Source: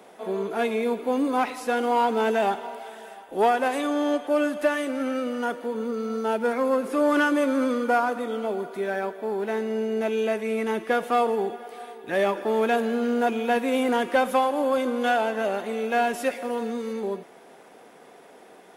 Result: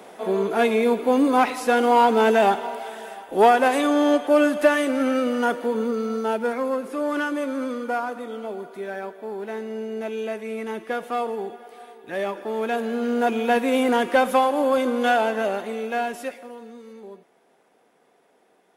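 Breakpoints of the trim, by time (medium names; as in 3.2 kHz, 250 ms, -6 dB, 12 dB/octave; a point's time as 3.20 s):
5.74 s +5.5 dB
6.97 s -4 dB
12.52 s -4 dB
13.40 s +3 dB
15.31 s +3 dB
16.23 s -4.5 dB
16.57 s -12 dB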